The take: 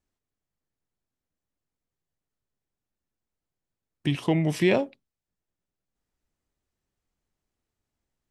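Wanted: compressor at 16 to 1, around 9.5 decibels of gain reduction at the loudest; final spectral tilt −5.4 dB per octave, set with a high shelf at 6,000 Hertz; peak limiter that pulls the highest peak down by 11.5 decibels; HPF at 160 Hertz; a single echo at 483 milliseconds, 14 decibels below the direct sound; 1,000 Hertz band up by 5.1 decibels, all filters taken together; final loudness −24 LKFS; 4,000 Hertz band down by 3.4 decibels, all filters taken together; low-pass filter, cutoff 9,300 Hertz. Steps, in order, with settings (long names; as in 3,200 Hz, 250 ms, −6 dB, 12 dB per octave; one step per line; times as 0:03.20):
high-pass filter 160 Hz
low-pass filter 9,300 Hz
parametric band 1,000 Hz +7 dB
parametric band 4,000 Hz −7.5 dB
high-shelf EQ 6,000 Hz +6.5 dB
downward compressor 16 to 1, threshold −25 dBFS
brickwall limiter −25.5 dBFS
single-tap delay 483 ms −14 dB
level +12.5 dB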